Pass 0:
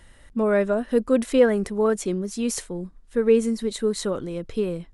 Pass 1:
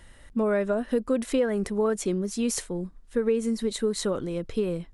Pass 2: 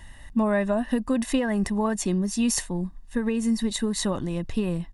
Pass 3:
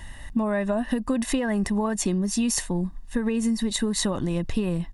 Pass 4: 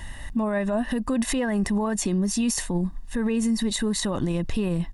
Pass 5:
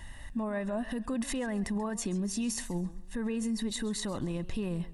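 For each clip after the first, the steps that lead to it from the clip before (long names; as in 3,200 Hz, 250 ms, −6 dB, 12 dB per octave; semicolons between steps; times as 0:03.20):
downward compressor 5 to 1, threshold −21 dBFS, peak gain reduction 9 dB
comb filter 1.1 ms, depth 67%; level +2.5 dB
downward compressor, threshold −26 dBFS, peak gain reduction 8 dB; level +5 dB
brickwall limiter −20 dBFS, peak gain reduction 9.5 dB; level +3 dB
feedback echo with a swinging delay time 134 ms, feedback 33%, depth 118 cents, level −18 dB; level −8.5 dB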